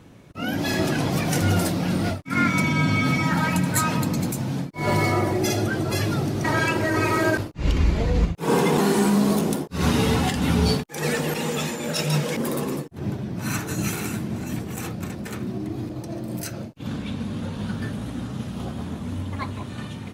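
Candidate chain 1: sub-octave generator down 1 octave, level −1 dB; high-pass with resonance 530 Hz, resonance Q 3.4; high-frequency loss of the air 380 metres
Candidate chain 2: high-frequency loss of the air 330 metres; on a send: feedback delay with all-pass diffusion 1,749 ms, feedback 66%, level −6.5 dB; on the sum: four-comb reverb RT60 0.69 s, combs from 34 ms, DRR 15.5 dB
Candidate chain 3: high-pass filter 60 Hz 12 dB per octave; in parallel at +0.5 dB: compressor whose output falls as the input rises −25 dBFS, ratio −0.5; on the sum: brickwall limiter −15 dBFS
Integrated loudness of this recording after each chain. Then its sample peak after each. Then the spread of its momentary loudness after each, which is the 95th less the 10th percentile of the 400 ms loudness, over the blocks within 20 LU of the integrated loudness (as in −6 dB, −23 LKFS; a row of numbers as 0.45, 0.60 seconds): −25.5, −24.0, −24.0 LKFS; −7.5, −6.5, −15.0 dBFS; 15, 9, 2 LU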